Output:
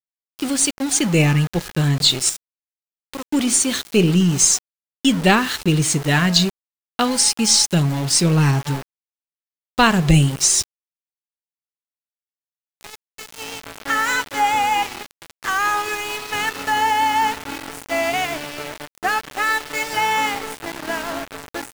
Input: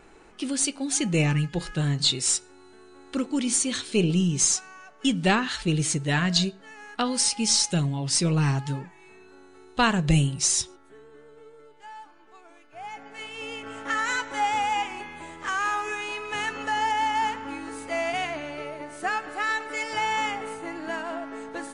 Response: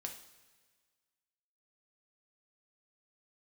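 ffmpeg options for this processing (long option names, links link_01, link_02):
-filter_complex "[0:a]asettb=1/sr,asplit=3[link_01][link_02][link_03];[link_01]atrim=end=2.294[link_04];[link_02]atrim=start=2.29:end=3.29,asetpts=PTS-STARTPTS,afade=type=in:duration=0.004:curve=qsin,afade=type=out:start_time=0.996:duration=0.004:curve=qsin,acompressor=threshold=-41dB:ratio=2[link_05];[link_03]atrim=start=3.286[link_06];[link_04][link_05]acrossfade=duration=0.004:curve1=hsin:curve2=qsin[link_07];[link_07][link_06]acrossfade=duration=0.004:curve1=qsin:curve2=hsin,aeval=exprs='val(0)*gte(abs(val(0)),0.0251)':channel_layout=same,volume=7dB"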